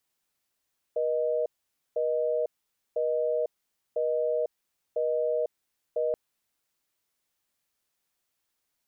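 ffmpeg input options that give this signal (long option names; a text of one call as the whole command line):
ffmpeg -f lavfi -i "aevalsrc='0.0447*(sin(2*PI*480*t)+sin(2*PI*620*t))*clip(min(mod(t,1),0.5-mod(t,1))/0.005,0,1)':duration=5.18:sample_rate=44100" out.wav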